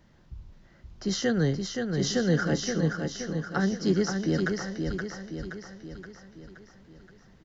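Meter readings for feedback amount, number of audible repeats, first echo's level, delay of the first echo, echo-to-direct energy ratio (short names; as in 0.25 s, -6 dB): 53%, 6, -5.0 dB, 0.523 s, -3.5 dB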